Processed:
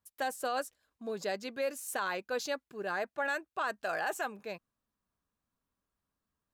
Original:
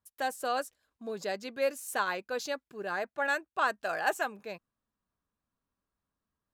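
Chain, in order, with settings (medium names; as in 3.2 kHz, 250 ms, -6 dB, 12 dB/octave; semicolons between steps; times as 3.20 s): peak limiter -24 dBFS, peak gain reduction 9 dB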